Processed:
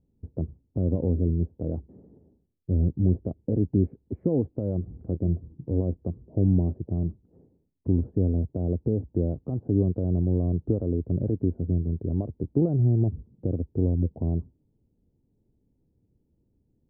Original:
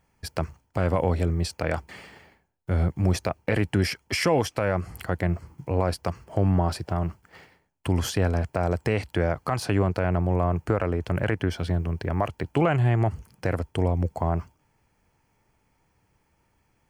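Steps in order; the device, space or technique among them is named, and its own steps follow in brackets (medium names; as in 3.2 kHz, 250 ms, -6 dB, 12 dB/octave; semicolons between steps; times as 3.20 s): 4.95–5.80 s: doubling 25 ms -13.5 dB; under water (low-pass 430 Hz 24 dB/octave; peaking EQ 250 Hz +4.5 dB 0.53 oct)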